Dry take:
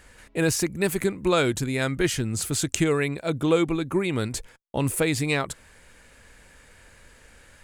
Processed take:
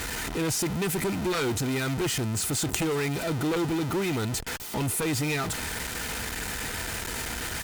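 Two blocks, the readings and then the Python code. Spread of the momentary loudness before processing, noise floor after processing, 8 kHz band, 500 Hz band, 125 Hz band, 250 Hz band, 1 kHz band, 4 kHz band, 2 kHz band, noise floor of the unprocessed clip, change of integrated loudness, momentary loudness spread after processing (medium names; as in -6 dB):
8 LU, -35 dBFS, +0.5 dB, -5.0 dB, -1.5 dB, -3.0 dB, -0.5 dB, +0.5 dB, -1.5 dB, -54 dBFS, -3.0 dB, 5 LU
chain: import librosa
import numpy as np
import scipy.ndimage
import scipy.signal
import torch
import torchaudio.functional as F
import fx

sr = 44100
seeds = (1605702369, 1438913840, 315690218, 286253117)

y = x + 0.5 * 10.0 ** (-19.5 / 20.0) * np.sign(x)
y = fx.notch_comb(y, sr, f0_hz=560.0)
y = fx.cheby_harmonics(y, sr, harmonics=(3,), levels_db=(-6,), full_scale_db=-4.0)
y = F.gain(torch.from_numpy(y), 1.0).numpy()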